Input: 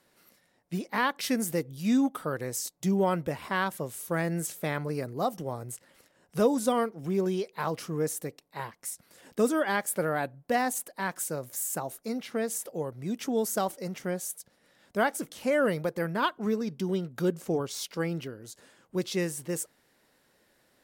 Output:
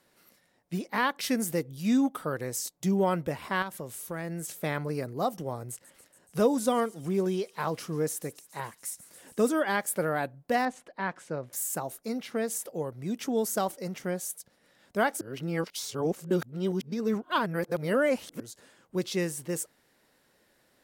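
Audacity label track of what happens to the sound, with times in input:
3.620000	4.490000	downward compressor 2 to 1, threshold −36 dBFS
5.700000	9.460000	delay with a high-pass on its return 141 ms, feedback 79%, high-pass 4,300 Hz, level −16 dB
10.650000	11.530000	low-pass filter 3,000 Hz
15.210000	18.400000	reverse

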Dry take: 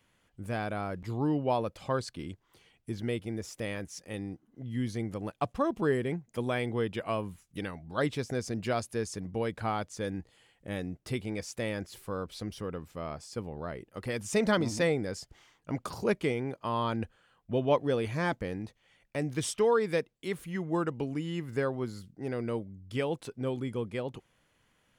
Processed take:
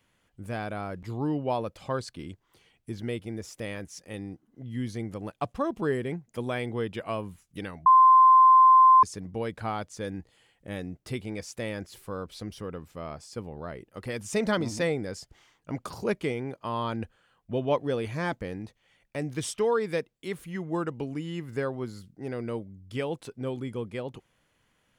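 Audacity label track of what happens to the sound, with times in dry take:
7.860000	9.030000	beep over 1,040 Hz −12.5 dBFS

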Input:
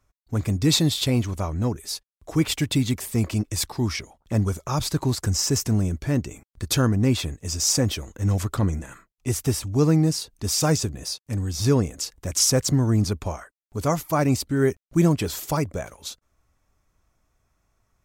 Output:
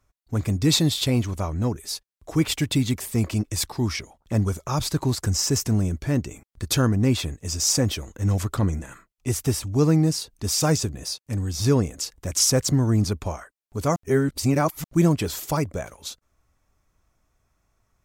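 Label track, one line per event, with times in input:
13.960000	14.840000	reverse

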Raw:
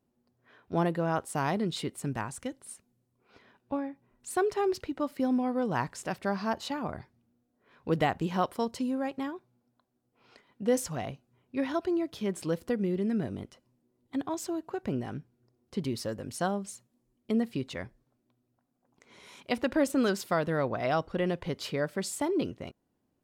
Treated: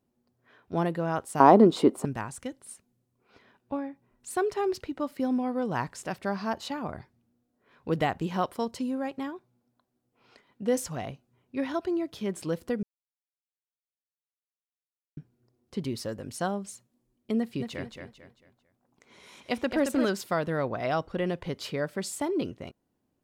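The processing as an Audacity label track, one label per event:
1.400000	2.050000	flat-topped bell 520 Hz +15.5 dB 2.9 octaves
12.830000	15.170000	silence
17.380000	20.050000	repeating echo 223 ms, feedback 34%, level −6 dB

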